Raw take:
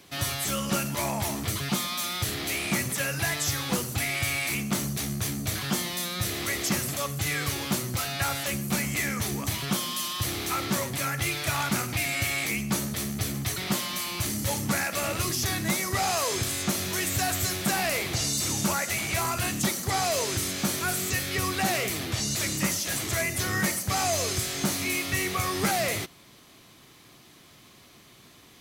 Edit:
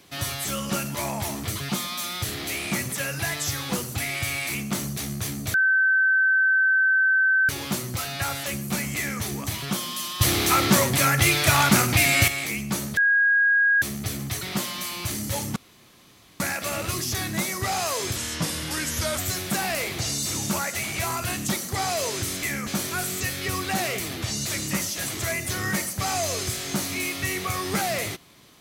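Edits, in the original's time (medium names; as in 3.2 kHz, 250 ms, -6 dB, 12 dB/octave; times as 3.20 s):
5.54–7.49 s: bleep 1.54 kHz -16.5 dBFS
8.96–9.21 s: copy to 20.57 s
10.21–12.28 s: gain +9 dB
12.97 s: add tone 1.64 kHz -16 dBFS 0.85 s
14.71 s: insert room tone 0.84 s
16.47–17.33 s: speed 84%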